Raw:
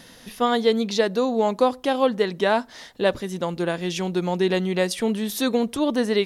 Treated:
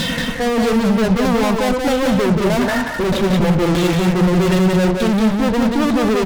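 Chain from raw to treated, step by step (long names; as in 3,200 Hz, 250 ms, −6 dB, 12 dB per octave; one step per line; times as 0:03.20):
harmonic-percussive split with one part muted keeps harmonic
auto-filter low-pass saw down 1.6 Hz 290–4,500 Hz
reversed playback
downward compressor 6 to 1, threshold −30 dBFS, peak gain reduction 18.5 dB
reversed playback
fuzz pedal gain 50 dB, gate −59 dBFS
low-shelf EQ 170 Hz +10 dB
on a send: single-tap delay 180 ms −3.5 dB
on the sum: level −5 dB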